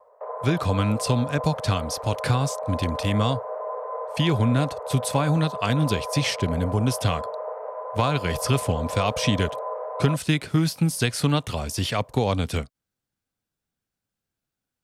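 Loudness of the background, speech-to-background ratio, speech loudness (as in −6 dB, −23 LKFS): −32.5 LKFS, 7.5 dB, −25.0 LKFS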